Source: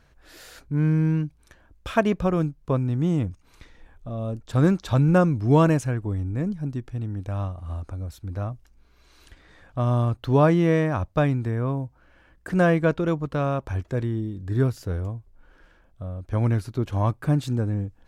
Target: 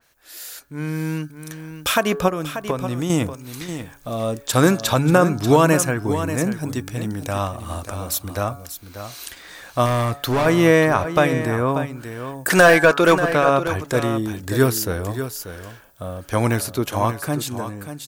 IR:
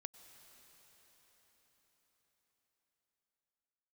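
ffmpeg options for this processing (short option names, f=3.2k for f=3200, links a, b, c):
-filter_complex "[0:a]aemphasis=mode=production:type=riaa,bandreject=f=141.5:t=h:w=4,bandreject=f=283:t=h:w=4,bandreject=f=424.5:t=h:w=4,bandreject=f=566:t=h:w=4,bandreject=f=707.5:t=h:w=4,bandreject=f=849:t=h:w=4,bandreject=f=990.5:t=h:w=4,bandreject=f=1.132k:t=h:w=4,bandreject=f=1.2735k:t=h:w=4,bandreject=f=1.415k:t=h:w=4,bandreject=f=1.5565k:t=h:w=4,bandreject=f=1.698k:t=h:w=4,asettb=1/sr,asplit=3[a][b][c];[a]atrim=end=2.284[d];[b]atrim=start=2.28:end=3.1,asetpts=PTS-STARTPTS,afade=t=in:d=0.004:c=qsin,afade=t=out:st=0.816:d=0.004:c=qsin,acompressor=threshold=-33dB:ratio=6[e];[c]atrim=start=3.096[f];[d][e]acrossfade=d=0.004:c1=hsin:c2=qsin[g];[g][f]acrossfade=d=0.004:c1=qsin:c2=hsin,alimiter=limit=-15dB:level=0:latency=1:release=236,dynaudnorm=f=250:g=11:m=13.5dB,asettb=1/sr,asplit=3[h][i][j];[h]atrim=end=9.864[k];[i]atrim=start=9.86:end=10.46,asetpts=PTS-STARTPTS,afade=t=in:d=0.004:c=qsin,afade=t=out:st=0.596:d=0.004:c=qsin,volume=17dB,asoftclip=hard,volume=-17dB[l];[j]atrim=start=10.456[m];[k][l]acrossfade=d=0.004:c1=hsin:c2=qsin[n];[n][m]acrossfade=d=0.004:c1=qsin:c2=hsin,asettb=1/sr,asplit=3[o][p][q];[o]atrim=end=12.504[r];[p]atrim=start=12.5:end=13.17,asetpts=PTS-STARTPTS,afade=t=in:d=0.004:c=qsin,afade=t=out:st=0.666:d=0.004:c=qsin,asplit=2[s][t];[t]highpass=f=720:p=1,volume=15dB,asoftclip=type=tanh:threshold=-2.5dB[u];[s][u]amix=inputs=2:normalize=0,lowpass=f=7.4k:p=1,volume=-6dB[v];[q]atrim=start=13.166[w];[r][v]acrossfade=d=0.004:c1=hsin:c2=qsin[x];[x][w]acrossfade=d=0.004:c1=qsin:c2=hsin,aecho=1:1:587:0.299,adynamicequalizer=threshold=0.02:dfrequency=2600:dqfactor=0.7:tfrequency=2600:tqfactor=0.7:attack=5:release=100:ratio=0.375:range=4:mode=cutabove:tftype=highshelf"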